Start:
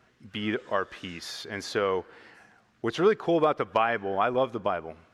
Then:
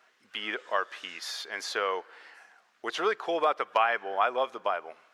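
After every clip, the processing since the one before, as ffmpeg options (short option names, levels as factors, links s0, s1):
-af "highpass=680,volume=1.19"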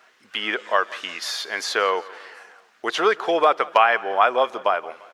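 -af "aecho=1:1:173|346|519|692:0.0841|0.0446|0.0236|0.0125,volume=2.66"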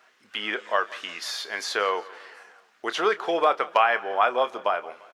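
-filter_complex "[0:a]asplit=2[s0][s1];[s1]adelay=29,volume=0.224[s2];[s0][s2]amix=inputs=2:normalize=0,volume=0.631"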